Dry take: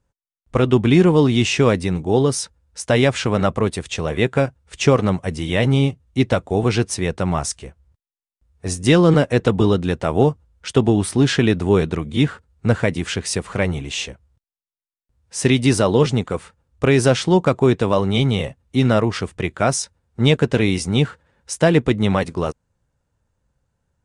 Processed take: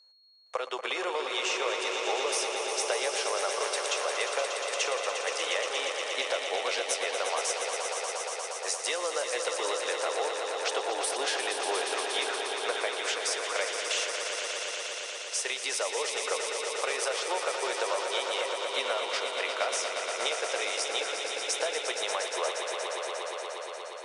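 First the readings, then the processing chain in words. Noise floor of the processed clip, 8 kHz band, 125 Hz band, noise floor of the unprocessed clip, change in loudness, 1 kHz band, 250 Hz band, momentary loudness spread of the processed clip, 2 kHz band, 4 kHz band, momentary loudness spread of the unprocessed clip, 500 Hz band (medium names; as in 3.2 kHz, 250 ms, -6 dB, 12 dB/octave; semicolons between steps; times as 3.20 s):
-39 dBFS, -2.0 dB, under -40 dB, under -85 dBFS, -11.5 dB, -5.5 dB, -29.5 dB, 4 LU, -5.0 dB, -3.0 dB, 10 LU, -12.0 dB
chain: steep high-pass 510 Hz 36 dB/octave; peaking EQ 5.7 kHz +3 dB 0.9 oct; compression 10:1, threshold -29 dBFS, peak gain reduction 17 dB; whistle 4.3 kHz -58 dBFS; on a send: echo with a slow build-up 118 ms, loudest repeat 5, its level -8 dB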